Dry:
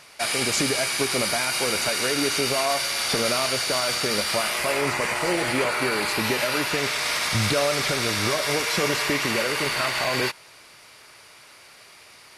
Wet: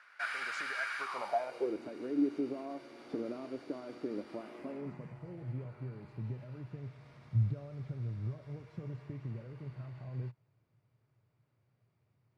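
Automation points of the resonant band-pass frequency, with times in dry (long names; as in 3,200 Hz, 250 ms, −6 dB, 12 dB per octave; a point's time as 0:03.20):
resonant band-pass, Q 5.4
0:00.97 1,500 Hz
0:01.78 300 Hz
0:04.58 300 Hz
0:05.21 120 Hz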